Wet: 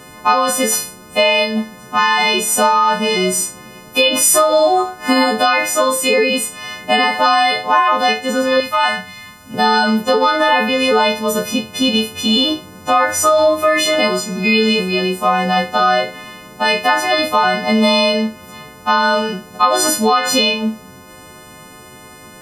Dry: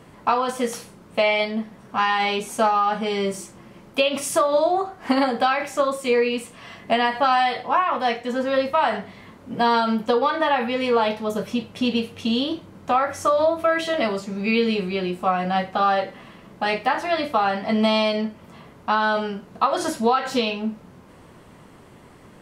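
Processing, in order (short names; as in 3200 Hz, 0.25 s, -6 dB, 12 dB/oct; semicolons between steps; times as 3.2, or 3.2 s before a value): frequency quantiser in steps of 3 st; 8.6–9.54 bell 400 Hz -14 dB 1.6 oct; in parallel at +2.5 dB: limiter -13.5 dBFS, peak gain reduction 8.5 dB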